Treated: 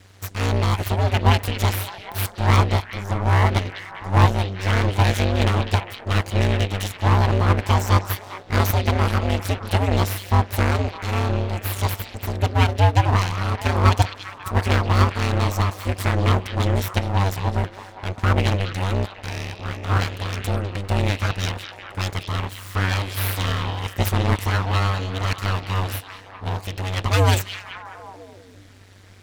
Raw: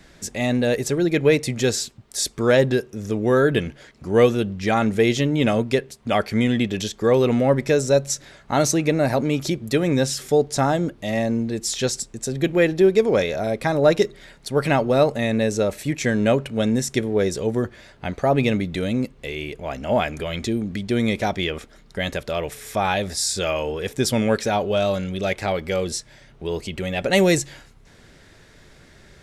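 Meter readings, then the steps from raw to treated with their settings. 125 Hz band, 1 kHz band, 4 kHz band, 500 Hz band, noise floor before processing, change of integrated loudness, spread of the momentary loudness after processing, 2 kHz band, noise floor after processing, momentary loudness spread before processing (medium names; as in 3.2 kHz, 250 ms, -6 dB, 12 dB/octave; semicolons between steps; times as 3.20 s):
+8.0 dB, +3.5 dB, +0.5 dB, -8.5 dB, -51 dBFS, -0.5 dB, 11 LU, +0.5 dB, -43 dBFS, 10 LU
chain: full-wave rectifier; repeats whose band climbs or falls 202 ms, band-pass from 3.4 kHz, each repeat -0.7 oct, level -6 dB; ring modulator 96 Hz; trim +3.5 dB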